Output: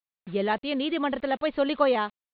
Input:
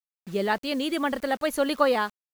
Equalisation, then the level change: steep low-pass 4000 Hz 72 dB/oct; dynamic EQ 1500 Hz, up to -5 dB, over -40 dBFS, Q 2.8; 0.0 dB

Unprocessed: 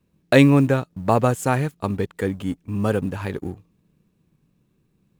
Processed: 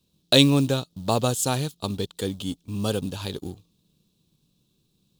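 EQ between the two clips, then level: resonant high shelf 2700 Hz +10.5 dB, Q 3; -4.5 dB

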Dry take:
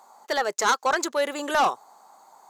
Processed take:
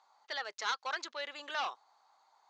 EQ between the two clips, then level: band-pass 4800 Hz, Q 1; air absorption 230 m; 0.0 dB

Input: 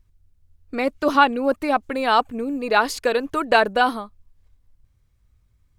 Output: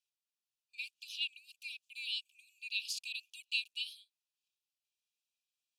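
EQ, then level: Chebyshev high-pass 2400 Hz, order 10; high shelf 11000 Hz -12 dB; -6.0 dB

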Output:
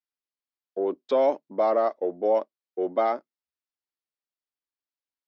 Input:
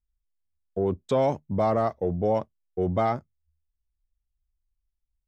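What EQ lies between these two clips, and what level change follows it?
dynamic EQ 580 Hz, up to +6 dB, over -38 dBFS, Q 5; elliptic band-pass 290–5100 Hz, stop band 40 dB; 0.0 dB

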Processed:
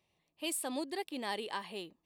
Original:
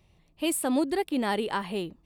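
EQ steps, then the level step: HPF 460 Hz 6 dB/oct; notch 1400 Hz, Q 7.7; dynamic EQ 4900 Hz, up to +6 dB, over -47 dBFS, Q 0.89; -8.0 dB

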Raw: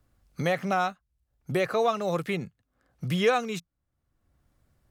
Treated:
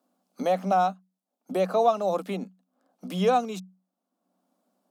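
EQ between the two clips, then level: rippled Chebyshev high-pass 180 Hz, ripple 9 dB; bell 1900 Hz -11.5 dB 0.76 oct; +7.0 dB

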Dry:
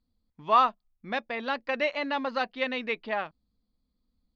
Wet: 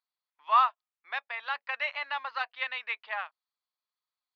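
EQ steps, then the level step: HPF 900 Hz 24 dB/oct; LPF 3500 Hz 12 dB/oct; 0.0 dB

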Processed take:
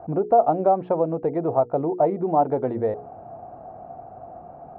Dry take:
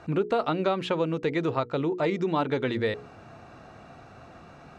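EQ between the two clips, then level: synth low-pass 730 Hz, resonance Q 5.3; air absorption 80 m; 0.0 dB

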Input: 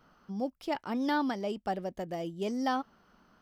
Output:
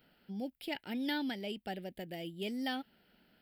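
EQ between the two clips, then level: dynamic EQ 560 Hz, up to -5 dB, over -42 dBFS, Q 1; tilt +2 dB/oct; fixed phaser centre 2700 Hz, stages 4; +1.0 dB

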